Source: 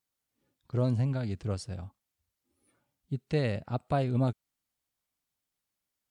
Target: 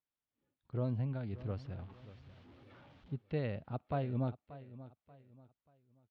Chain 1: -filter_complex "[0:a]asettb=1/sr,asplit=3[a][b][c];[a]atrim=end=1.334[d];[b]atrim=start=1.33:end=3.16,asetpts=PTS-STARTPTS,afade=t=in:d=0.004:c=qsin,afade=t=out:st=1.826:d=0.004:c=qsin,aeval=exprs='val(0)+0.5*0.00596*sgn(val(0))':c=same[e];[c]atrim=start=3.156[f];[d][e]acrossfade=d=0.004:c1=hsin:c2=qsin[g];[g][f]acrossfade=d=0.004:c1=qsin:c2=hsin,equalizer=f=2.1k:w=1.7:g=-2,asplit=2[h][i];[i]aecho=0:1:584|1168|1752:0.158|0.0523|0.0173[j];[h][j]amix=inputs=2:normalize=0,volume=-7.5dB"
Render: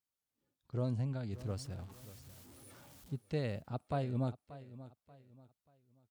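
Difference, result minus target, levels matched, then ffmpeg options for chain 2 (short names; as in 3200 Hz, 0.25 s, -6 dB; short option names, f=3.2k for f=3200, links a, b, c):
4000 Hz band +6.0 dB
-filter_complex "[0:a]asettb=1/sr,asplit=3[a][b][c];[a]atrim=end=1.334[d];[b]atrim=start=1.33:end=3.16,asetpts=PTS-STARTPTS,afade=t=in:d=0.004:c=qsin,afade=t=out:st=1.826:d=0.004:c=qsin,aeval=exprs='val(0)+0.5*0.00596*sgn(val(0))':c=same[e];[c]atrim=start=3.156[f];[d][e]acrossfade=d=0.004:c1=hsin:c2=qsin[g];[g][f]acrossfade=d=0.004:c1=qsin:c2=hsin,lowpass=f=3.4k:w=0.5412,lowpass=f=3.4k:w=1.3066,equalizer=f=2.1k:w=1.7:g=-2,asplit=2[h][i];[i]aecho=0:1:584|1168|1752:0.158|0.0523|0.0173[j];[h][j]amix=inputs=2:normalize=0,volume=-7.5dB"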